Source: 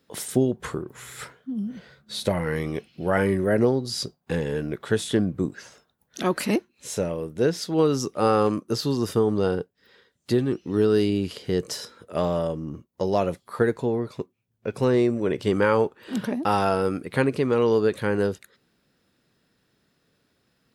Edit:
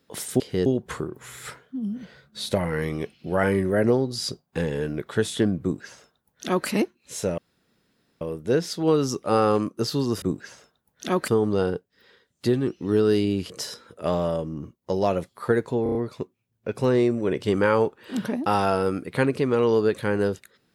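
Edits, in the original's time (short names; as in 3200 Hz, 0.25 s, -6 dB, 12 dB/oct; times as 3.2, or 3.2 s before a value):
5.36–6.42 copy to 9.13
7.12 insert room tone 0.83 s
11.35–11.61 move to 0.4
13.94 stutter 0.03 s, 5 plays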